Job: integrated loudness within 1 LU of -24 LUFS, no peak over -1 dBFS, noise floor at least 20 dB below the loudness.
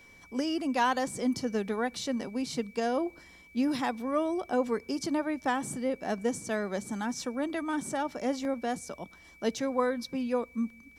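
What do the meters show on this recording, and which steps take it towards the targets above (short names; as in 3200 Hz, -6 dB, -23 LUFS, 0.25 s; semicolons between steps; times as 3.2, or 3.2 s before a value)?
steady tone 2300 Hz; tone level -54 dBFS; loudness -31.5 LUFS; peak -14.5 dBFS; loudness target -24.0 LUFS
-> notch 2300 Hz, Q 30; gain +7.5 dB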